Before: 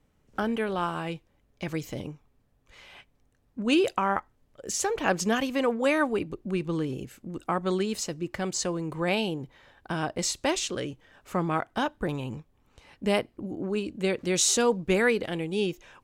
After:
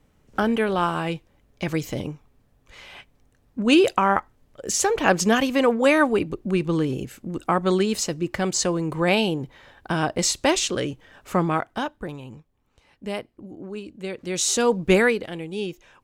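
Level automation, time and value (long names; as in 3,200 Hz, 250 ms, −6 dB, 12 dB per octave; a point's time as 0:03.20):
0:11.38 +6.5 dB
0:12.20 −5 dB
0:14.09 −5 dB
0:14.94 +7.5 dB
0:15.25 −1.5 dB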